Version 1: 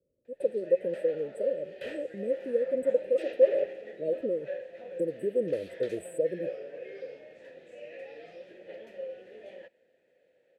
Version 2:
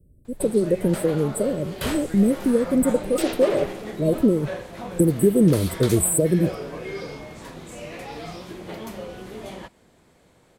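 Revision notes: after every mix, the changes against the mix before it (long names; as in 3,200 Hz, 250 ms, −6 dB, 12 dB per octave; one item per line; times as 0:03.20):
master: remove formant filter e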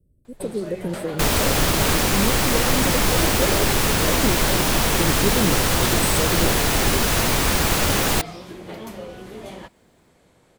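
speech −7.0 dB
second sound: unmuted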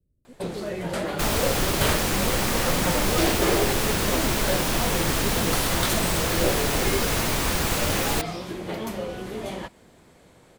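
speech −9.5 dB
first sound +4.0 dB
second sound −5.0 dB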